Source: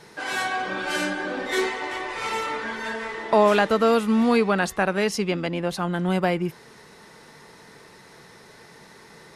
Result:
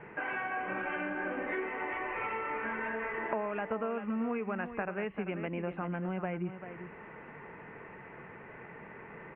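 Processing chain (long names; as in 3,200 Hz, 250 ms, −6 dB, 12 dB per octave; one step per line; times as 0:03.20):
downward compressor 6 to 1, threshold −33 dBFS, peak gain reduction 19 dB
Butterworth low-pass 2,700 Hz 72 dB per octave
single-tap delay 391 ms −10 dB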